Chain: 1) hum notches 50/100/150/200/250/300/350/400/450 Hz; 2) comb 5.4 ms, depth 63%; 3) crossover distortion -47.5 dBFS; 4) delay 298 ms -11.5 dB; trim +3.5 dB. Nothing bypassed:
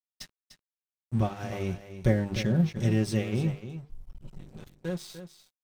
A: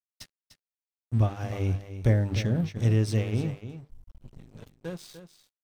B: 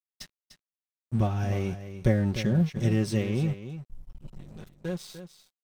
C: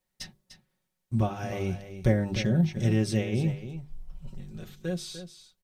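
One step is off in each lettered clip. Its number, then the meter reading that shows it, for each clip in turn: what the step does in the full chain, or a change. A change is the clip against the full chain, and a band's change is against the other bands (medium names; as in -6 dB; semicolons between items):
2, 125 Hz band +4.5 dB; 1, loudness change +1.0 LU; 3, distortion -19 dB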